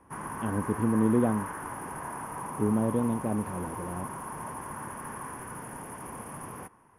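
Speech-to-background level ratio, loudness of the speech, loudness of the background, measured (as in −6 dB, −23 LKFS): 9.0 dB, −29.5 LKFS, −38.5 LKFS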